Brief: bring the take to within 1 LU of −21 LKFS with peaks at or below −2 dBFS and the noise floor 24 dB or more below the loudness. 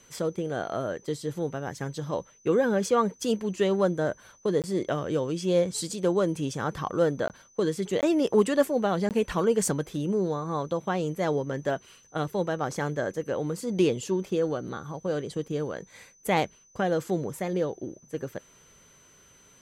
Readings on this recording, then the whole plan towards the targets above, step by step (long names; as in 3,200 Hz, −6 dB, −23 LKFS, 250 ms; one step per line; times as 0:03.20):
number of dropouts 4; longest dropout 18 ms; interfering tone 6,100 Hz; level of the tone −57 dBFS; integrated loudness −28.0 LKFS; sample peak −9.5 dBFS; target loudness −21.0 LKFS
→ repair the gap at 0:04.62/0:07.28/0:08.01/0:09.09, 18 ms
notch filter 6,100 Hz, Q 30
level +7 dB